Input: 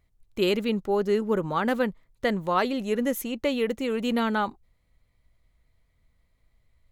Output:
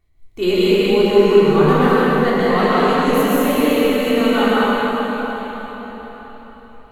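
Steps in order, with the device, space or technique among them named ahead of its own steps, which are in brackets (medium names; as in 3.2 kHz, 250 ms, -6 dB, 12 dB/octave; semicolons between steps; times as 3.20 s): simulated room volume 680 m³, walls furnished, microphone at 3.4 m; cathedral (reverberation RT60 4.7 s, pre-delay 106 ms, DRR -8.5 dB); trim -2 dB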